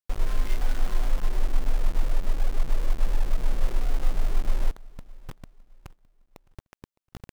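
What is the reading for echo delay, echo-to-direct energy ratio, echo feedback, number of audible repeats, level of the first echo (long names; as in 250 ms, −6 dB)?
612 ms, −23.0 dB, 39%, 2, −23.5 dB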